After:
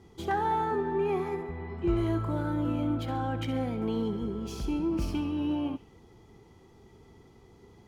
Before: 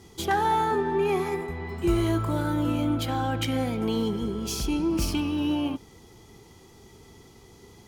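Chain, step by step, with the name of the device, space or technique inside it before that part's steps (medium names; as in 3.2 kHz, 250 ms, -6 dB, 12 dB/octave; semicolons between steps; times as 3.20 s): 1.42–1.97 s: low-pass 5.1 kHz 12 dB/octave; through cloth (treble shelf 3.2 kHz -14.5 dB); feedback echo behind a high-pass 67 ms, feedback 46%, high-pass 2.5 kHz, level -11 dB; trim -3.5 dB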